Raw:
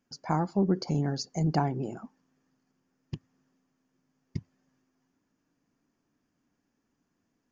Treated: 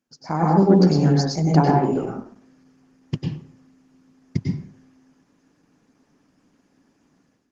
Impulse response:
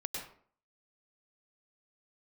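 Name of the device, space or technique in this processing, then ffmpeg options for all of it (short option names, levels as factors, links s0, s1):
far-field microphone of a smart speaker: -filter_complex "[0:a]asplit=3[s0][s1][s2];[s0]afade=t=out:st=1.55:d=0.02[s3];[s1]adynamicequalizer=threshold=0.00708:dfrequency=380:dqfactor=1.8:tfrequency=380:tqfactor=1.8:attack=5:release=100:ratio=0.375:range=2.5:mode=boostabove:tftype=bell,afade=t=in:st=1.55:d=0.02,afade=t=out:st=2.02:d=0.02[s4];[s2]afade=t=in:st=2.02:d=0.02[s5];[s3][s4][s5]amix=inputs=3:normalize=0[s6];[1:a]atrim=start_sample=2205[s7];[s6][s7]afir=irnorm=-1:irlink=0,highpass=110,dynaudnorm=f=270:g=3:m=5.62" -ar 48000 -c:a libopus -b:a 16k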